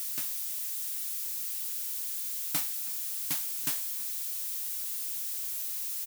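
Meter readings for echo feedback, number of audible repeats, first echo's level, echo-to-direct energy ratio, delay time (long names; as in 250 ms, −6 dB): 31%, 2, −21.0 dB, −20.5 dB, 323 ms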